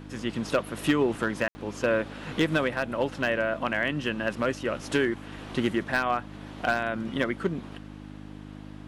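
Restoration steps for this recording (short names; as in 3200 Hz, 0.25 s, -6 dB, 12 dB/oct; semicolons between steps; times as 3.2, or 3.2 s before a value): clip repair -15.5 dBFS; de-hum 51 Hz, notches 6; room tone fill 1.48–1.55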